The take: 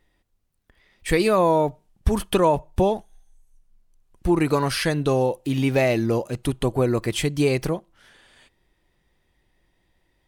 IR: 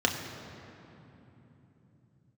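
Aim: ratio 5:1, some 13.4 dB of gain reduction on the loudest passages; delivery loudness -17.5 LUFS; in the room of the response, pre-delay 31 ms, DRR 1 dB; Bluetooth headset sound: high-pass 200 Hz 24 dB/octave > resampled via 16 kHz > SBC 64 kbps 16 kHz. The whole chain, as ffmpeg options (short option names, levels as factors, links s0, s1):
-filter_complex "[0:a]acompressor=threshold=0.0316:ratio=5,asplit=2[s0][s1];[1:a]atrim=start_sample=2205,adelay=31[s2];[s1][s2]afir=irnorm=-1:irlink=0,volume=0.237[s3];[s0][s3]amix=inputs=2:normalize=0,highpass=f=200:w=0.5412,highpass=f=200:w=1.3066,aresample=16000,aresample=44100,volume=5.01" -ar 16000 -c:a sbc -b:a 64k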